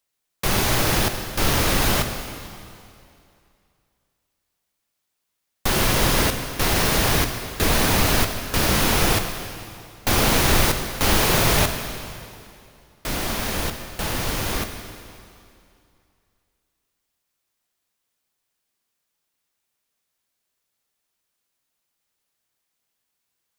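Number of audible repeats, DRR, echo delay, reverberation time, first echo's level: no echo, 6.0 dB, no echo, 2.5 s, no echo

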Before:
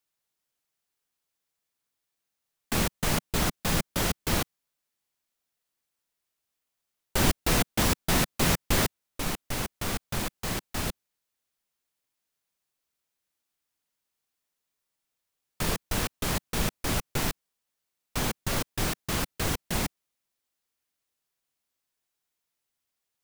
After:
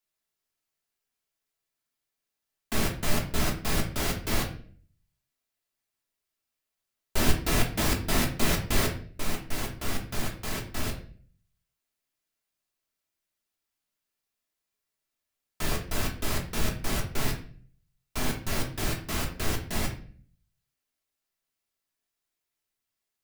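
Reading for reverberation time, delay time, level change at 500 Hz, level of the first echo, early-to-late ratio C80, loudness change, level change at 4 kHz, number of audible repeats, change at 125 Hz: 0.45 s, no echo, -1.0 dB, no echo, 13.5 dB, -1.5 dB, -2.0 dB, no echo, -0.5 dB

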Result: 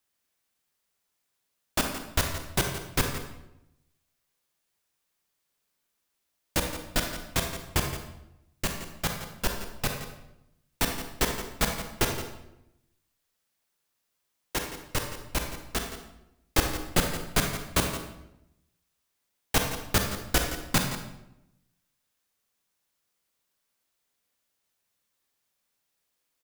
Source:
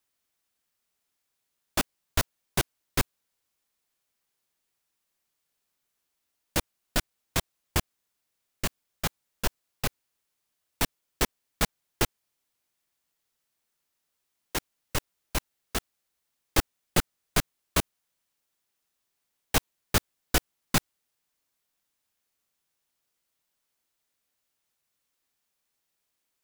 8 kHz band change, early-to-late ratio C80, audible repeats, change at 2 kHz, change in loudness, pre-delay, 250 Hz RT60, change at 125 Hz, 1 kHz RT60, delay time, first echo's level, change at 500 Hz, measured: +1.5 dB, 7.0 dB, 1, +2.0 dB, +1.0 dB, 32 ms, 1.0 s, +2.0 dB, 0.80 s, 170 ms, -12.0 dB, +2.5 dB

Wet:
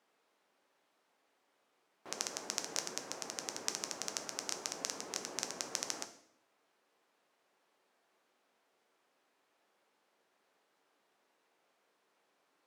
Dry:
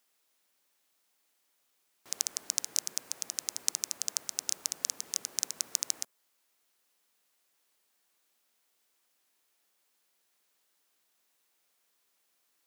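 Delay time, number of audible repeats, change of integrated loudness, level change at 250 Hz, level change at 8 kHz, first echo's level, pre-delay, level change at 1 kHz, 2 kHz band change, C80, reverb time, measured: no echo, no echo, -6.5 dB, +8.5 dB, -8.0 dB, no echo, 7 ms, +8.0 dB, +3.0 dB, 15.0 dB, 0.70 s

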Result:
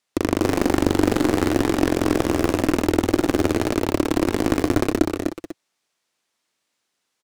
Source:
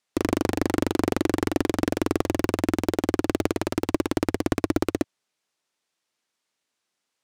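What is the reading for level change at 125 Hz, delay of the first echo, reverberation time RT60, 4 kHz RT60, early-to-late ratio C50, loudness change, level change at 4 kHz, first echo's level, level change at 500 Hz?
+4.5 dB, 63 ms, no reverb, no reverb, no reverb, +4.5 dB, +4.5 dB, -13.0 dB, +5.0 dB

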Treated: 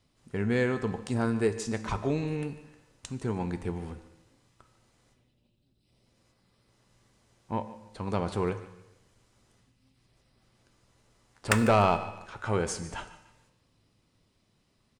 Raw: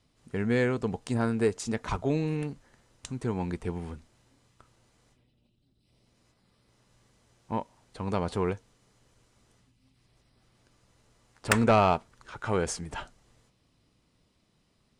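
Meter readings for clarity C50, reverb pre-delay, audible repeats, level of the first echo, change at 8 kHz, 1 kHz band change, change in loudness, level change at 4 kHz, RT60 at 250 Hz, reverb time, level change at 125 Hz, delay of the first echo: 11.5 dB, 4 ms, 2, -16.5 dB, -0.5 dB, -0.5 dB, -0.5 dB, -0.5 dB, 0.90 s, 0.95 s, 0.0 dB, 148 ms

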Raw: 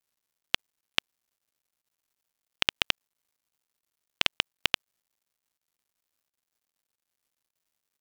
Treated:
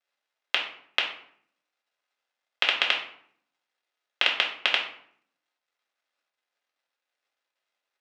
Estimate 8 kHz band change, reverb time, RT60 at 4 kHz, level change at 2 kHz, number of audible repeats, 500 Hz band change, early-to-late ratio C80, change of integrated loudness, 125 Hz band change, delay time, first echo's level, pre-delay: -6.5 dB, 0.60 s, 0.40 s, +6.0 dB, no echo, +4.5 dB, 11.0 dB, +4.0 dB, under -15 dB, no echo, no echo, 3 ms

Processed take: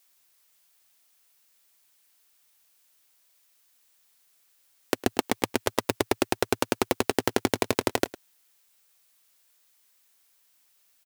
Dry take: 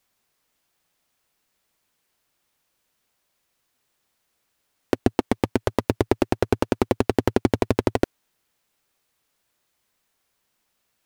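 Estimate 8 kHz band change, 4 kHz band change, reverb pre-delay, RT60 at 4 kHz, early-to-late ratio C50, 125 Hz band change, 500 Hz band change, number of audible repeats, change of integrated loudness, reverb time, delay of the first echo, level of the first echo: +7.5 dB, +4.5 dB, no reverb, no reverb, no reverb, -10.5 dB, -4.5 dB, 1, -3.5 dB, no reverb, 106 ms, -18.0 dB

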